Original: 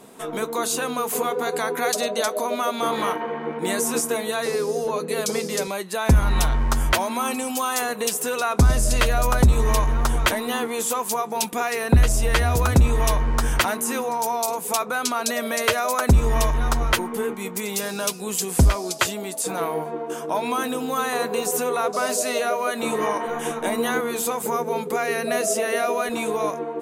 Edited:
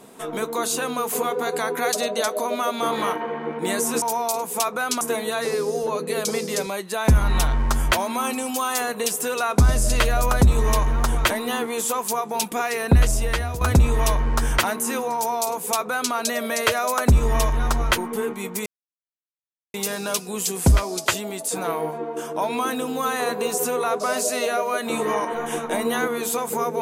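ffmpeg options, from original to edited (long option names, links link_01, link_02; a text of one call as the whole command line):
ffmpeg -i in.wav -filter_complex "[0:a]asplit=5[link_01][link_02][link_03][link_04][link_05];[link_01]atrim=end=4.022[link_06];[link_02]atrim=start=14.158:end=15.152[link_07];[link_03]atrim=start=4.018:end=12.62,asetpts=PTS-STARTPTS,afade=type=out:start_time=8.062:duration=0.54:silence=0.281838[link_08];[link_04]atrim=start=12.62:end=17.67,asetpts=PTS-STARTPTS,afade=type=in:duration=0.004:curve=hsin:silence=0.281838,afade=type=out:start_time=5.046:duration=0.004:curve=hsin,apad=pad_dur=1.08[link_09];[link_05]atrim=start=17.67,asetpts=PTS-STARTPTS,afade=type=in:duration=0.004:curve=hsin[link_10];[link_06][link_07]acrossfade=duration=0.004:curve1=hsin:curve2=hsin[link_11];[link_08][link_09][link_10]concat=n=3:v=0:a=1[link_12];[link_11][link_12]acrossfade=duration=0.004:curve1=hsin:curve2=hsin" out.wav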